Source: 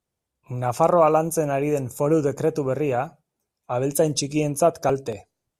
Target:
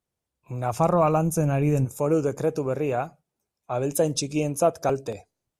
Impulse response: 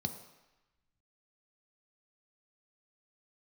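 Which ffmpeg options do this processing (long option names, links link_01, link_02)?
-filter_complex "[0:a]asplit=3[link_01][link_02][link_03];[link_01]afade=type=out:start_time=0.72:duration=0.02[link_04];[link_02]asubboost=boost=8.5:cutoff=220,afade=type=in:start_time=0.72:duration=0.02,afade=type=out:start_time=1.84:duration=0.02[link_05];[link_03]afade=type=in:start_time=1.84:duration=0.02[link_06];[link_04][link_05][link_06]amix=inputs=3:normalize=0,volume=-2.5dB"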